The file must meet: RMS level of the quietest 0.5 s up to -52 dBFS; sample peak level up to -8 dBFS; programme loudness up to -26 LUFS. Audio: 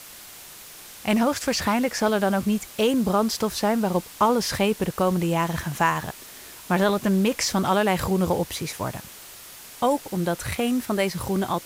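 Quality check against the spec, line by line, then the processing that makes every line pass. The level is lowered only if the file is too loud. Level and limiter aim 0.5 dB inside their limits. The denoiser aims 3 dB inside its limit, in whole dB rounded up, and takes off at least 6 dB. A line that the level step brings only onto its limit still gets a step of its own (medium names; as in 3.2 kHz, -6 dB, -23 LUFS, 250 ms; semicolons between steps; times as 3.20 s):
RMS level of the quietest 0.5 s -43 dBFS: fail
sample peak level -7.0 dBFS: fail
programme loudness -24.0 LUFS: fail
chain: noise reduction 10 dB, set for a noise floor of -43 dBFS; trim -2.5 dB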